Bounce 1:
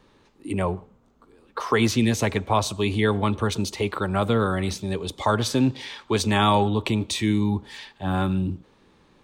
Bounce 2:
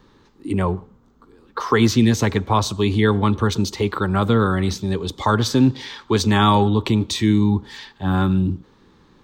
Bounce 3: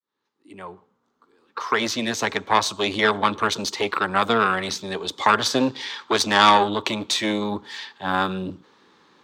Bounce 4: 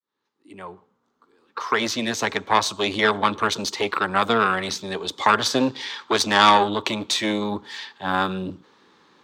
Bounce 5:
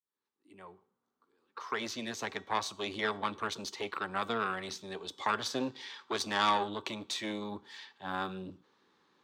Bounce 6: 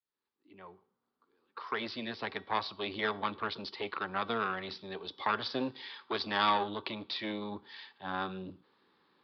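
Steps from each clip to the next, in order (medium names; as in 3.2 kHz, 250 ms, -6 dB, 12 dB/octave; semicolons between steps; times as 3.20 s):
fifteen-band graphic EQ 630 Hz -8 dB, 2.5 kHz -7 dB, 10 kHz -11 dB; trim +6 dB
fade-in on the opening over 2.96 s; Chebyshev shaper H 4 -14 dB, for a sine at -3 dBFS; frequency weighting A; trim +1.5 dB
no audible change
feedback comb 380 Hz, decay 0.41 s, harmonics all, mix 50%; trim -8 dB
resampled via 11.025 kHz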